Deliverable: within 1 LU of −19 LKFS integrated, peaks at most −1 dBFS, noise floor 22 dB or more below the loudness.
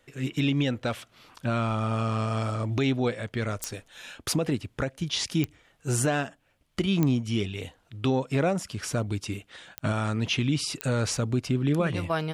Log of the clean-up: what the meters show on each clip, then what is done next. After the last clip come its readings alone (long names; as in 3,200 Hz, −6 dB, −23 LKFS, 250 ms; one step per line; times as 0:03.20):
number of clicks 5; integrated loudness −28.0 LKFS; sample peak −8.0 dBFS; target loudness −19.0 LKFS
→ click removal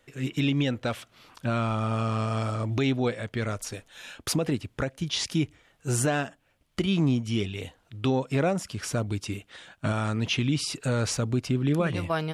number of clicks 0; integrated loudness −28.0 LKFS; sample peak −13.5 dBFS; target loudness −19.0 LKFS
→ level +9 dB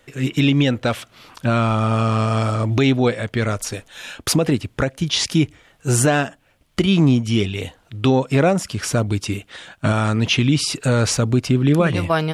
integrated loudness −19.0 LKFS; sample peak −4.5 dBFS; background noise floor −58 dBFS